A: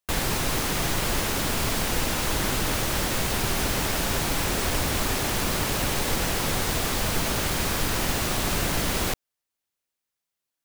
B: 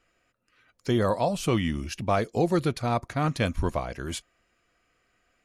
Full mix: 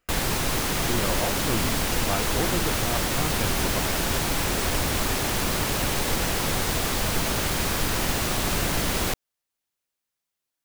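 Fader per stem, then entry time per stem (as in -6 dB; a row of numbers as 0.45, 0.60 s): +0.5, -5.5 dB; 0.00, 0.00 s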